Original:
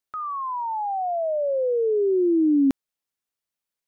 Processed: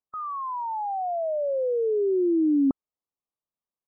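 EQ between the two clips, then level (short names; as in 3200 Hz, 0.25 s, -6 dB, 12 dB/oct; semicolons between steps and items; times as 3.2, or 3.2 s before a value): brick-wall FIR low-pass 1300 Hz; -2.5 dB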